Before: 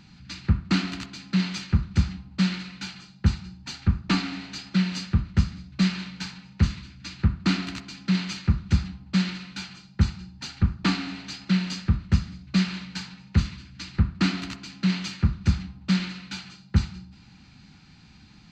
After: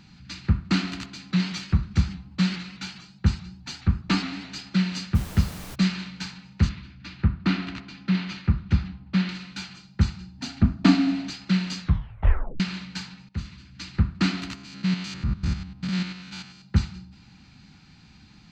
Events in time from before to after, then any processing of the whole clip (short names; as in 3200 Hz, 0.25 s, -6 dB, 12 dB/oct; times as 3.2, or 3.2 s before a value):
1.31–4.61 shaped vibrato saw up 4.8 Hz, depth 100 cents
5.14–5.74 added noise pink -40 dBFS
6.69–9.29 LPF 3500 Hz
10.38–11.3 small resonant body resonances 260/660 Hz, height 15 dB, ringing for 55 ms
11.81 tape stop 0.79 s
13.29–13.84 fade in, from -15.5 dB
14.55–16.62 stepped spectrum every 0.1 s